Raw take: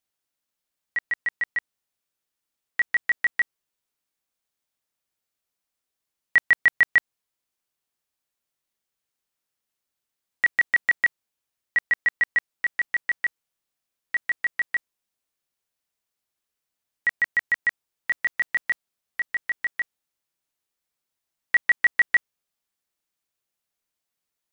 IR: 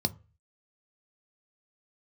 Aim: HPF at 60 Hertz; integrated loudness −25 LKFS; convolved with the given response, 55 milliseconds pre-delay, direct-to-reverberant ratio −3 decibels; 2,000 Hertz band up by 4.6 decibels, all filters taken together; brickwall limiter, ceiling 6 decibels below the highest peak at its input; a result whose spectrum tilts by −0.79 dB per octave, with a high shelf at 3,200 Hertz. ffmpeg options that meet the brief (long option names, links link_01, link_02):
-filter_complex "[0:a]highpass=60,equalizer=frequency=2000:width_type=o:gain=5.5,highshelf=frequency=3200:gain=-3,alimiter=limit=-12dB:level=0:latency=1,asplit=2[link_01][link_02];[1:a]atrim=start_sample=2205,adelay=55[link_03];[link_02][link_03]afir=irnorm=-1:irlink=0,volume=-2.5dB[link_04];[link_01][link_04]amix=inputs=2:normalize=0,volume=-5.5dB"